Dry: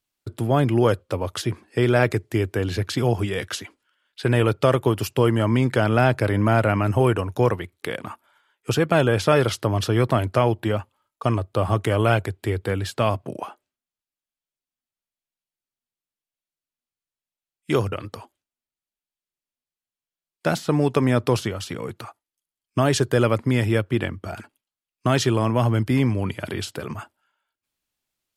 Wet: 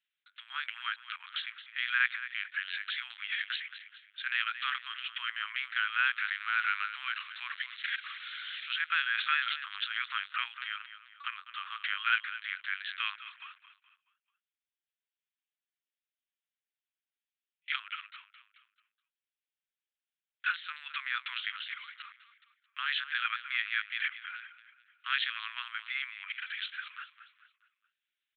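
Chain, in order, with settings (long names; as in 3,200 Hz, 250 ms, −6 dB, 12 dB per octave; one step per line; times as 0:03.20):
0:06.16–0:08.72: spike at every zero crossing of −22 dBFS
repeating echo 214 ms, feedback 43%, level −13 dB
linear-prediction vocoder at 8 kHz pitch kept
Butterworth high-pass 1,400 Hz 48 dB per octave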